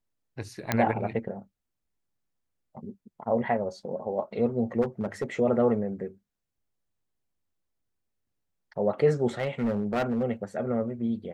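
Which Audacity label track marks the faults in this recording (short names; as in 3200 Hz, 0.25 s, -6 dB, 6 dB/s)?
0.720000	0.720000	pop -9 dBFS
4.810000	5.240000	clipped -23.5 dBFS
9.390000	10.240000	clipped -22.5 dBFS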